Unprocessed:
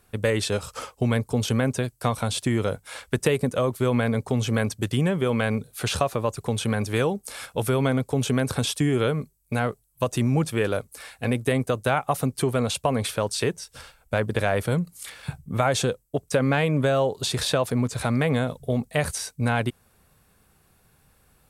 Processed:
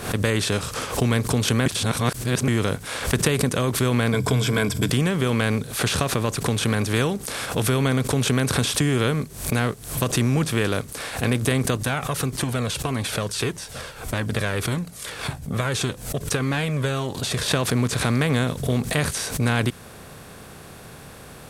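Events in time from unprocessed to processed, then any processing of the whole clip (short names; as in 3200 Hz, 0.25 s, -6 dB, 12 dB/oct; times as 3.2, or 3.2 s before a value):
1.66–2.48 reverse
4.12–4.9 ripple EQ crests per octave 1.7, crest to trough 15 dB
11.77–17.48 cascading flanger falling 1.7 Hz
whole clip: per-bin compression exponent 0.6; dynamic EQ 640 Hz, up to -7 dB, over -35 dBFS, Q 1.1; backwards sustainer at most 100 dB/s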